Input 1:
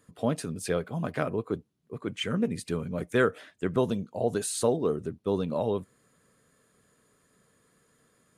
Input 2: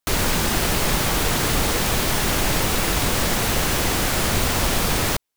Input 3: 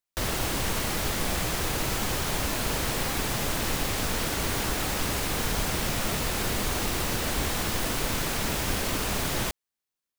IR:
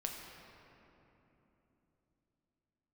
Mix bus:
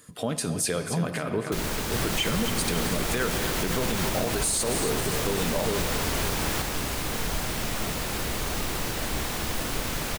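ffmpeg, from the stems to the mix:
-filter_complex "[0:a]highshelf=f=6.9k:g=-10.5,acompressor=threshold=-30dB:ratio=4,crystalizer=i=5.5:c=0,volume=2.5dB,asplit=3[a][b][c];[b]volume=-3.5dB[d];[c]volume=-9.5dB[e];[1:a]adelay=1450,volume=-9.5dB[f];[2:a]adelay=1750,volume=-5.5dB,asplit=2[g][h];[h]volume=-3.5dB[i];[3:a]atrim=start_sample=2205[j];[d][i]amix=inputs=2:normalize=0[k];[k][j]afir=irnorm=-1:irlink=0[l];[e]aecho=0:1:271|542|813|1084|1355|1626|1897:1|0.49|0.24|0.118|0.0576|0.0282|0.0138[m];[a][f][g][l][m]amix=inputs=5:normalize=0,alimiter=limit=-16dB:level=0:latency=1:release=66"

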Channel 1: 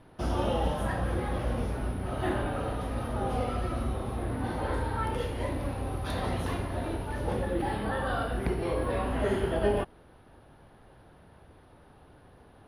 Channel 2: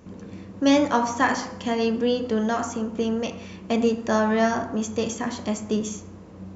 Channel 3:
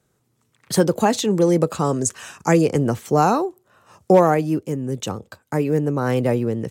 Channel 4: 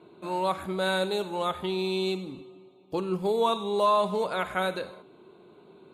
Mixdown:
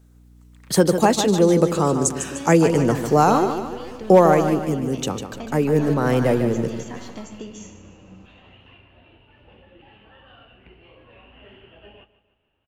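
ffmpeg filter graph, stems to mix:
-filter_complex "[0:a]lowpass=f=2.8k:t=q:w=13,flanger=delay=6.9:depth=6.8:regen=-45:speed=1.7:shape=triangular,adelay=2200,volume=-17.5dB,asplit=2[a][b];[b]volume=-15.5dB[c];[1:a]acompressor=threshold=-27dB:ratio=6,adelay=1700,volume=-5.5dB,asplit=2[d][e];[e]volume=-13dB[f];[2:a]highpass=110,aeval=exprs='val(0)+0.00251*(sin(2*PI*60*n/s)+sin(2*PI*2*60*n/s)/2+sin(2*PI*3*60*n/s)/3+sin(2*PI*4*60*n/s)/4+sin(2*PI*5*60*n/s)/5)':c=same,acrusher=bits=11:mix=0:aa=0.000001,volume=1dB,asplit=2[g][h];[h]volume=-8.5dB[i];[3:a]aeval=exprs='abs(val(0))':c=same,adelay=2400,volume=-15dB,asplit=2[j][k];[k]volume=-8.5dB[l];[c][f][i][l]amix=inputs=4:normalize=0,aecho=0:1:150|300|450|600|750|900|1050:1|0.47|0.221|0.104|0.0488|0.0229|0.0108[m];[a][d][g][j][m]amix=inputs=5:normalize=0"

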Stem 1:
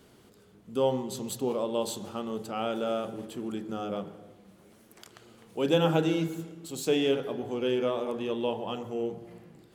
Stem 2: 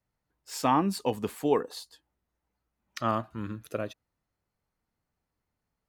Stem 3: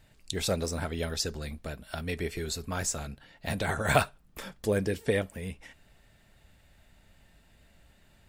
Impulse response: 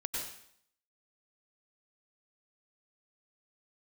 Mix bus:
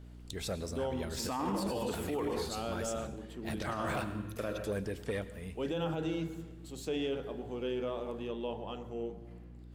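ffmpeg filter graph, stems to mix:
-filter_complex "[0:a]highshelf=f=7.1k:g=-7.5,volume=-7dB[a];[1:a]adelay=650,volume=-3.5dB,asplit=2[b][c];[c]volume=-4.5dB[d];[2:a]asoftclip=type=tanh:threshold=-19.5dB,adynamicequalizer=threshold=0.00562:dfrequency=3000:dqfactor=0.7:tfrequency=3000:tqfactor=0.7:attack=5:release=100:ratio=0.375:range=2.5:mode=cutabove:tftype=highshelf,volume=-8.5dB,asplit=3[e][f][g];[f]volume=-14.5dB[h];[g]apad=whole_len=288247[i];[b][i]sidechaincompress=threshold=-42dB:ratio=8:attack=16:release=903[j];[3:a]atrim=start_sample=2205[k];[d][h]amix=inputs=2:normalize=0[l];[l][k]afir=irnorm=-1:irlink=0[m];[a][j][e][m]amix=inputs=4:normalize=0,aeval=exprs='val(0)+0.00355*(sin(2*PI*60*n/s)+sin(2*PI*2*60*n/s)/2+sin(2*PI*3*60*n/s)/3+sin(2*PI*4*60*n/s)/4+sin(2*PI*5*60*n/s)/5)':c=same,alimiter=level_in=2dB:limit=-24dB:level=0:latency=1:release=28,volume=-2dB"

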